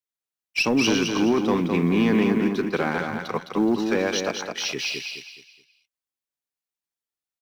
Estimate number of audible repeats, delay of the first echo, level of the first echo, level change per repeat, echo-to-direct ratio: 4, 211 ms, -5.0 dB, -9.5 dB, -4.5 dB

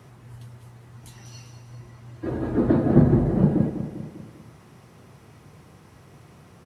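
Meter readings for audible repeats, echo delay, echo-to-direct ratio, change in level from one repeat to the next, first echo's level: 4, 199 ms, -9.0 dB, -5.5 dB, -10.5 dB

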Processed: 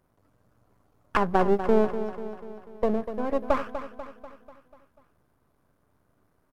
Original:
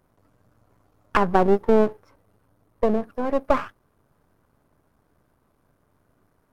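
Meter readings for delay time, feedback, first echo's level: 245 ms, 54%, -10.5 dB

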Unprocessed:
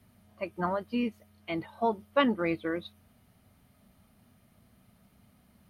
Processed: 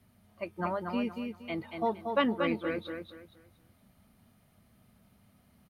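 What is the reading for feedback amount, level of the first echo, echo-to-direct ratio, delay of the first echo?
28%, -5.5 dB, -5.0 dB, 234 ms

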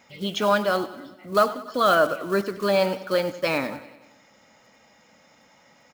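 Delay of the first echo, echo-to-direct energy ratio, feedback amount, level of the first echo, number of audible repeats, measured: 95 ms, -14.0 dB, 59%, -16.0 dB, 5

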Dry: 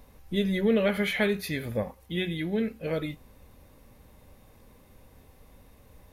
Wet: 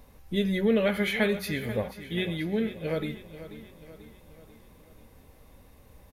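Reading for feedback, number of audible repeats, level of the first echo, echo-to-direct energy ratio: 51%, 4, -14.0 dB, -12.5 dB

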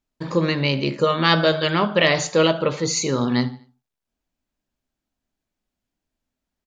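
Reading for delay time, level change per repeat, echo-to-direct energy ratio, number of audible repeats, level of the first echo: 77 ms, -7.5 dB, -19.0 dB, 2, -20.0 dB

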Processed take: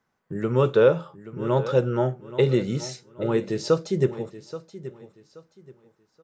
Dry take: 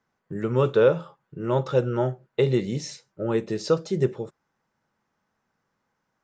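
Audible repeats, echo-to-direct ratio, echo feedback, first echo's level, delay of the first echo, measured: 2, -14.5 dB, 27%, -15.0 dB, 828 ms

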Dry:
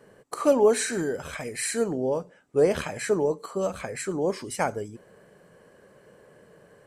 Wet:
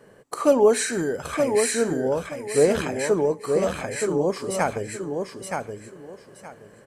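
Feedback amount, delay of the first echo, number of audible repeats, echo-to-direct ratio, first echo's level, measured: 22%, 922 ms, 3, -5.0 dB, -5.0 dB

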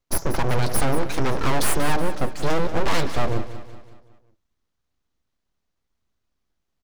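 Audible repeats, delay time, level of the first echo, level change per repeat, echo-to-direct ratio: 4, 186 ms, -13.0 dB, -6.5 dB, -12.0 dB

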